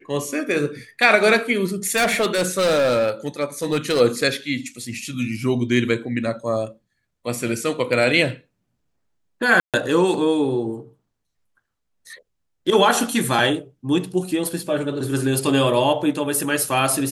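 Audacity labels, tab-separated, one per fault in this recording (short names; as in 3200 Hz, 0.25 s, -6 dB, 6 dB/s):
1.850000	4.010000	clipped -15 dBFS
9.600000	9.740000	gap 0.137 s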